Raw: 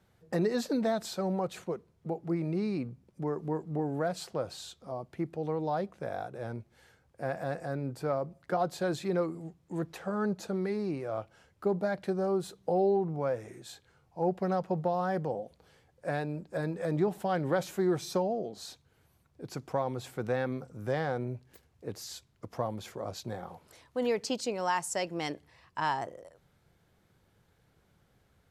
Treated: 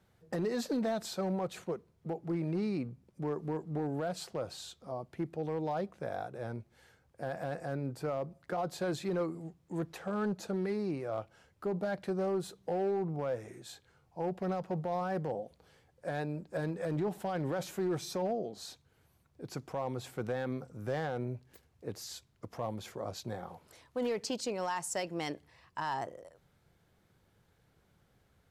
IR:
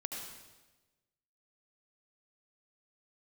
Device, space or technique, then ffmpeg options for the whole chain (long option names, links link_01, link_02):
limiter into clipper: -af "alimiter=limit=-23.5dB:level=0:latency=1:release=26,asoftclip=type=hard:threshold=-25.5dB,volume=-1.5dB"